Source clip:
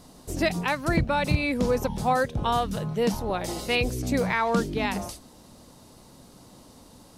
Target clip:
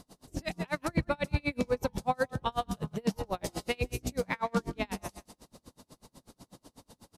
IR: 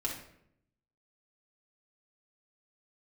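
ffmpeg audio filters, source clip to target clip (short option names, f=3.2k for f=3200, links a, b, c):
-filter_complex "[0:a]asplit=2[a][b];[b]alimiter=limit=-23dB:level=0:latency=1:release=129,volume=-1dB[c];[a][c]amix=inputs=2:normalize=0,aecho=1:1:163|326|489:0.237|0.064|0.0173,aresample=32000,aresample=44100,aeval=exprs='val(0)*pow(10,-35*(0.5-0.5*cos(2*PI*8.1*n/s))/20)':c=same,volume=-4.5dB"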